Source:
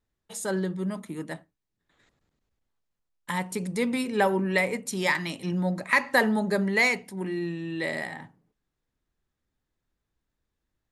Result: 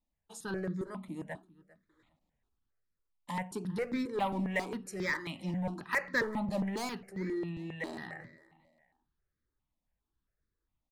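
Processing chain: treble shelf 5.3 kHz -11.5 dB; in parallel at -6 dB: wavefolder -25 dBFS; on the sum: feedback delay 398 ms, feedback 28%, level -21.5 dB; stepped phaser 7.4 Hz 410–2900 Hz; trim -6 dB

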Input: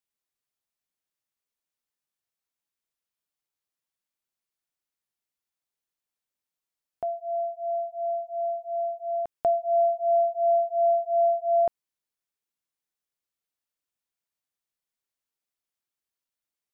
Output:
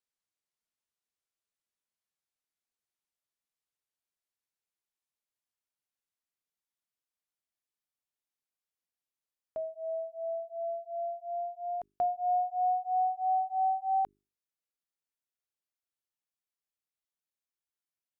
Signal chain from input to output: gliding tape speed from 53% -> 131%; hum notches 50/100/150/200/250/300/350/400 Hz; trim -6.5 dB

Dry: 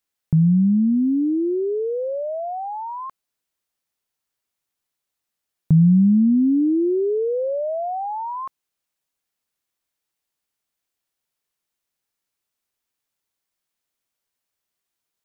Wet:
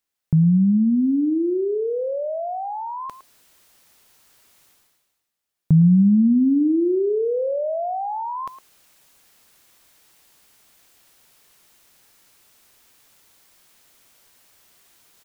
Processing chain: reverse; upward compressor, threshold -36 dBFS; reverse; speakerphone echo 110 ms, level -13 dB

